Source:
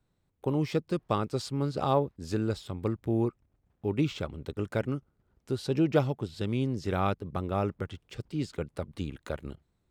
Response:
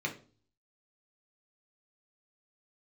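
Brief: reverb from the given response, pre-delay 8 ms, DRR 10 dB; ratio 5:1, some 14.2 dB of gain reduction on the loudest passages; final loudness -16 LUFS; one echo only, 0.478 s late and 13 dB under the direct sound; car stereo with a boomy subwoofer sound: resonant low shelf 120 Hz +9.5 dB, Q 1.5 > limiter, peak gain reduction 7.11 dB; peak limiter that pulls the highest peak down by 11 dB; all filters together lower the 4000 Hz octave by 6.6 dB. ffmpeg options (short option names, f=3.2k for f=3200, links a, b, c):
-filter_complex "[0:a]equalizer=f=4k:t=o:g=-8.5,acompressor=threshold=-35dB:ratio=5,alimiter=level_in=9dB:limit=-24dB:level=0:latency=1,volume=-9dB,aecho=1:1:478:0.224,asplit=2[a][b];[1:a]atrim=start_sample=2205,adelay=8[c];[b][c]afir=irnorm=-1:irlink=0,volume=-15dB[d];[a][d]amix=inputs=2:normalize=0,lowshelf=f=120:t=q:w=1.5:g=9.5,volume=27dB,alimiter=limit=-5.5dB:level=0:latency=1"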